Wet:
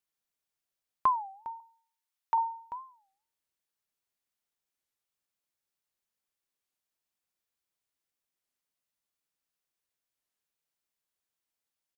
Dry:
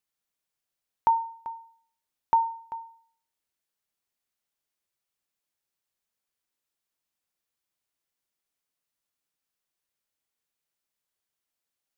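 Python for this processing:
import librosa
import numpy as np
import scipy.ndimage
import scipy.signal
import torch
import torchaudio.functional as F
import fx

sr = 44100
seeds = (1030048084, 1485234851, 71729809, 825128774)

y = fx.highpass(x, sr, hz=910.0, slope=12, at=(1.6, 2.38))
y = fx.record_warp(y, sr, rpm=33.33, depth_cents=250.0)
y = y * 10.0 ** (-3.0 / 20.0)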